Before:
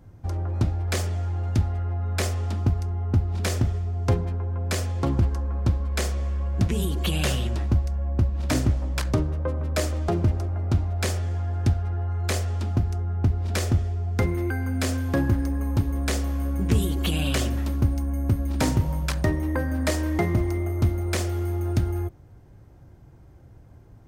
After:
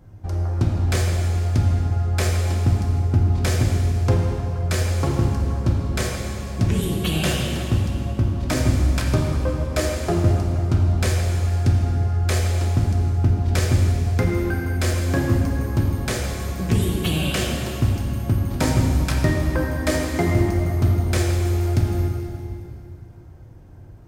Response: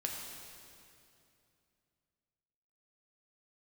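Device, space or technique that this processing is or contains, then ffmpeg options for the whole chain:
stairwell: -filter_complex "[1:a]atrim=start_sample=2205[a];[0:a][a]afir=irnorm=-1:irlink=0,volume=2.5dB"

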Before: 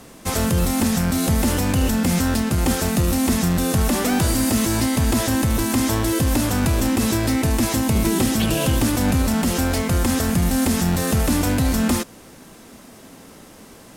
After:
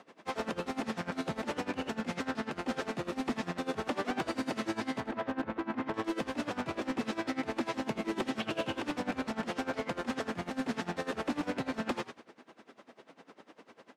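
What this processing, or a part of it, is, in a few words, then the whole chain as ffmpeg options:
helicopter radio: -filter_complex "[0:a]asettb=1/sr,asplit=3[a][b][c];[a]atrim=end=5.004[d];[b]atrim=start=5:end=5.94,asetpts=PTS-STARTPTS,afade=t=in:d=0.004:c=qsin,afade=t=out:st=0.936:d=0.004:c=qsin,lowpass=2k[e];[c]atrim=start=5.936[f];[d][e]acrossfade=d=0.004:c1=hsin:c2=qsin[g];[g][f]acrossfade=d=0.004:c1=qsin:c2=hsin,asplit=5[h][i][j][k][l];[i]adelay=83,afreqshift=-110,volume=-8.5dB[m];[j]adelay=166,afreqshift=-220,volume=-17.9dB[n];[k]adelay=249,afreqshift=-330,volume=-27.2dB[o];[l]adelay=332,afreqshift=-440,volume=-36.6dB[p];[h][m][n][o][p]amix=inputs=5:normalize=0,highpass=330,lowpass=2.9k,aeval=exprs='val(0)*pow(10,-20*(0.5-0.5*cos(2*PI*10*n/s))/20)':c=same,asoftclip=type=hard:threshold=-21.5dB,volume=-4dB"

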